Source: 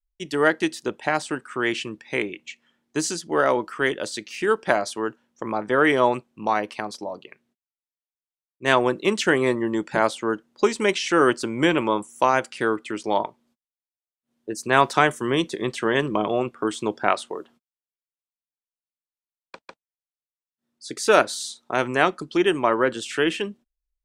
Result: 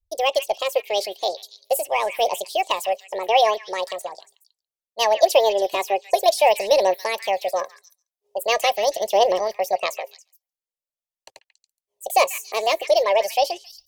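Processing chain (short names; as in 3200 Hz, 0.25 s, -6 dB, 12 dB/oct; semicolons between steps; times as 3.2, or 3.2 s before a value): bell 320 Hz +7 dB 0.89 oct; fixed phaser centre 350 Hz, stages 4; phaser 0.25 Hz, delay 5 ms, feedback 42%; delay with a stepping band-pass 0.243 s, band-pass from 1300 Hz, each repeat 1.4 oct, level -8.5 dB; speed mistake 45 rpm record played at 78 rpm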